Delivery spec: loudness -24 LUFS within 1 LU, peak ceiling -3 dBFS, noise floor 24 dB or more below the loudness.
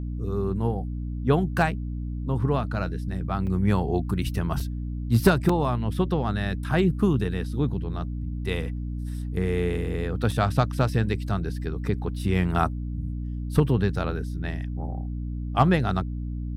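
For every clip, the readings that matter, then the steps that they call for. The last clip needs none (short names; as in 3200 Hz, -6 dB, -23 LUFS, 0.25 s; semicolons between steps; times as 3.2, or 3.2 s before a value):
dropouts 4; longest dropout 3.9 ms; hum 60 Hz; harmonics up to 300 Hz; hum level -28 dBFS; loudness -26.5 LUFS; peak -7.5 dBFS; loudness target -24.0 LUFS
-> interpolate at 3.47/4.6/5.49/10.31, 3.9 ms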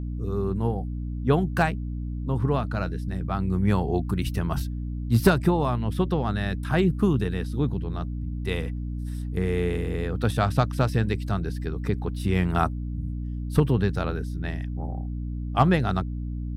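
dropouts 0; hum 60 Hz; harmonics up to 300 Hz; hum level -28 dBFS
-> de-hum 60 Hz, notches 5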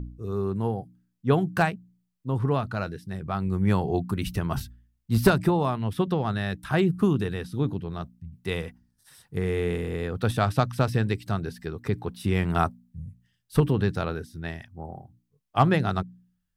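hum none; loudness -27.0 LUFS; peak -8.0 dBFS; loudness target -24.0 LUFS
-> gain +3 dB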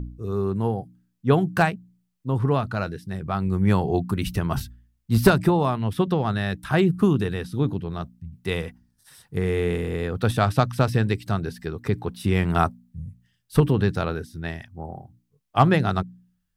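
loudness -24.0 LUFS; peak -5.0 dBFS; noise floor -73 dBFS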